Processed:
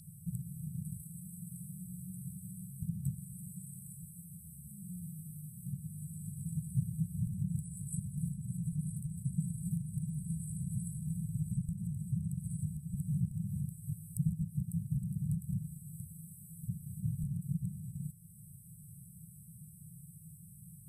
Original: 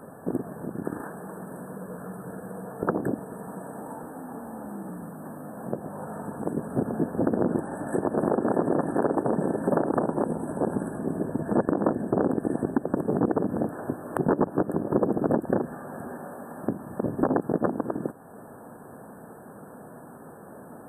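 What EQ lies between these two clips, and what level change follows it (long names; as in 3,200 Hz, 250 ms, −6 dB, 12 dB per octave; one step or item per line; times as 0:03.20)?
linear-phase brick-wall band-stop 180–4,900 Hz
parametric band 4,300 Hz +15 dB 0.98 octaves
+2.0 dB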